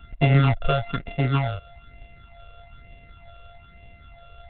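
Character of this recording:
a buzz of ramps at a fixed pitch in blocks of 64 samples
phaser sweep stages 8, 1.1 Hz, lowest notch 250–1,300 Hz
G.726

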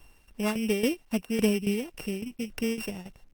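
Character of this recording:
a buzz of ramps at a fixed pitch in blocks of 16 samples
tremolo saw down 3.6 Hz, depth 75%
a quantiser's noise floor 12 bits, dither none
Opus

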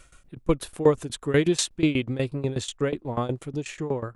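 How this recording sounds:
tremolo saw down 8.2 Hz, depth 90%

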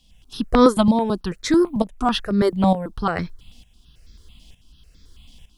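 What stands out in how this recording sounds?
a quantiser's noise floor 12 bits, dither none
tremolo saw up 1.1 Hz, depth 70%
notches that jump at a steady rate 9.1 Hz 390–2,900 Hz

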